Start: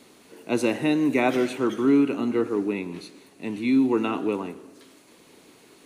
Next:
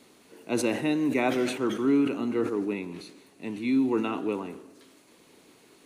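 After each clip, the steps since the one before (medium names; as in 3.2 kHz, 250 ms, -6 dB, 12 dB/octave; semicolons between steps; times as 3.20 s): decay stretcher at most 87 dB/s; trim -4 dB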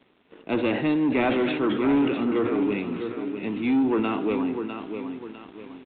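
feedback delay 652 ms, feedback 40%, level -9.5 dB; waveshaping leveller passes 2; trim -2.5 dB; G.726 40 kbps 8 kHz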